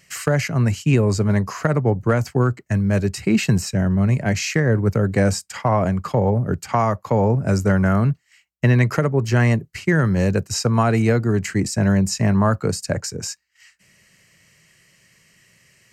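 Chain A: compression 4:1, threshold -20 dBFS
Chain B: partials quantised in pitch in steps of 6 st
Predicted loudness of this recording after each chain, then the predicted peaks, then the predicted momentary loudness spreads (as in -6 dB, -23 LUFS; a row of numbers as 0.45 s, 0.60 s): -24.5 LUFS, -16.5 LUFS; -7.5 dBFS, -2.0 dBFS; 4 LU, 6 LU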